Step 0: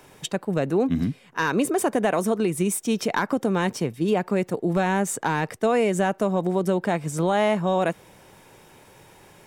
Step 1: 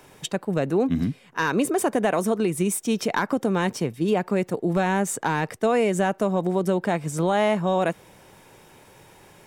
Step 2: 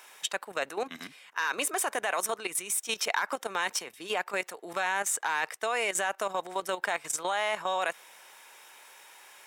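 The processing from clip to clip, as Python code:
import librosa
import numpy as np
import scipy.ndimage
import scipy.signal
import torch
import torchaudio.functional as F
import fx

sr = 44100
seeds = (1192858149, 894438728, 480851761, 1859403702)

y1 = x
y2 = scipy.signal.sosfilt(scipy.signal.butter(2, 1100.0, 'highpass', fs=sr, output='sos'), y1)
y2 = fx.notch(y2, sr, hz=4600.0, q=28.0)
y2 = fx.level_steps(y2, sr, step_db=12)
y2 = y2 * 10.0 ** (7.0 / 20.0)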